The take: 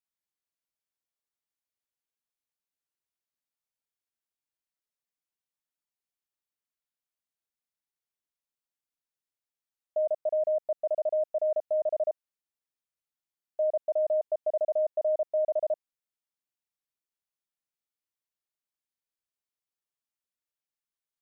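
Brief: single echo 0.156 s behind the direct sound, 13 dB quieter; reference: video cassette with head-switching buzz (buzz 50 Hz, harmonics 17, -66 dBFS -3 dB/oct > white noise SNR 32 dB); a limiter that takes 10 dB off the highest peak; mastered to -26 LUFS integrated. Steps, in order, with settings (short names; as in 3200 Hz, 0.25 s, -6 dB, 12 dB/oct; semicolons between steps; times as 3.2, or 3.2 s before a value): limiter -32 dBFS; echo 0.156 s -13 dB; buzz 50 Hz, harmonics 17, -66 dBFS -3 dB/oct; white noise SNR 32 dB; gain +14 dB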